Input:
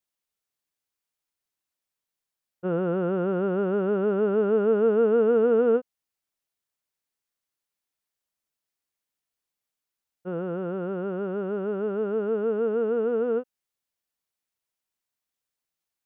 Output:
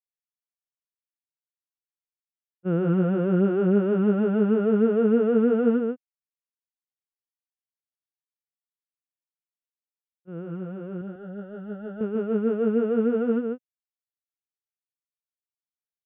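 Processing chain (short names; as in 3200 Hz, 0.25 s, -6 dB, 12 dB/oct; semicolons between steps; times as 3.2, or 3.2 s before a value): expander -19 dBFS; graphic EQ 125/250/500/1000/2000 Hz +7/+6/-3/-5/+3 dB; compressor 6:1, threshold -26 dBFS, peak gain reduction 9 dB; 11.01–12.01 fixed phaser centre 1600 Hz, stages 8; on a send: echo 0.145 s -4.5 dB; on the sum: gain +7.5 dB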